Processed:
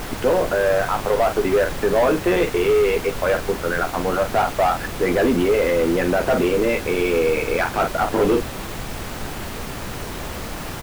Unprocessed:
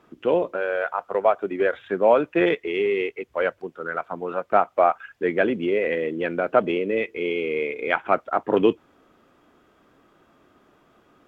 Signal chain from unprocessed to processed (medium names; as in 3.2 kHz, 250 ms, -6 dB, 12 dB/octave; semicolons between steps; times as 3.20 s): speed mistake 24 fps film run at 25 fps; early reflections 12 ms -5.5 dB, 48 ms -14.5 dB; waveshaping leveller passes 3; peak limiter -12 dBFS, peak gain reduction 8 dB; added noise pink -28 dBFS; bit crusher 5-bit; treble shelf 2.9 kHz -9 dB